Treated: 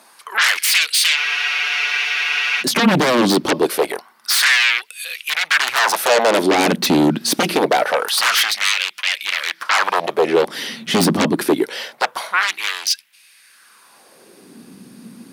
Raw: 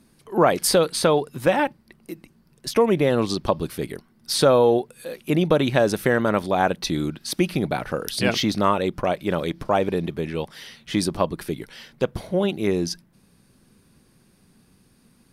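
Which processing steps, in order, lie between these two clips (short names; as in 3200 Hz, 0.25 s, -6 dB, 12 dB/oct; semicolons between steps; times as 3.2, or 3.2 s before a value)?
sine folder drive 19 dB, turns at -4 dBFS; LFO high-pass sine 0.25 Hz 210–2600 Hz; spectral freeze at 1.19, 1.42 s; gain -9 dB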